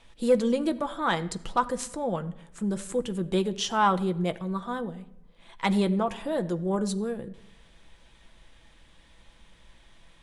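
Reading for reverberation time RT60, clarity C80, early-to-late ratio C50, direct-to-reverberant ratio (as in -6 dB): no single decay rate, 19.0 dB, 17.5 dB, 8.5 dB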